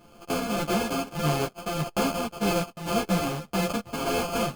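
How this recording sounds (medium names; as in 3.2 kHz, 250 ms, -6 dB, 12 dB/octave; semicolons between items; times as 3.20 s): a buzz of ramps at a fixed pitch in blocks of 64 samples; tremolo triangle 1.7 Hz, depth 60%; aliases and images of a low sample rate 1.9 kHz, jitter 0%; a shimmering, thickened sound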